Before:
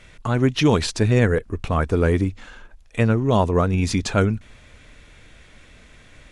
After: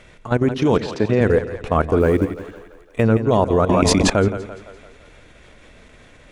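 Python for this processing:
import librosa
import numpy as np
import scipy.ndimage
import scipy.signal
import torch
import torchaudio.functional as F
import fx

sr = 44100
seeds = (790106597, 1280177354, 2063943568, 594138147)

p1 = fx.peak_eq(x, sr, hz=510.0, db=7.0, octaves=2.6)
p2 = fx.level_steps(p1, sr, step_db=16)
p3 = fx.bandpass_edges(p2, sr, low_hz=130.0, high_hz=4000.0, at=(0.77, 1.21))
p4 = fx.quant_companded(p3, sr, bits=8, at=(2.0, 3.02))
p5 = p4 + fx.echo_split(p4, sr, split_hz=450.0, low_ms=89, high_ms=170, feedback_pct=52, wet_db=-11, dry=0)
p6 = fx.env_flatten(p5, sr, amount_pct=100, at=(3.69, 4.1))
y = F.gain(torch.from_numpy(p6), 1.0).numpy()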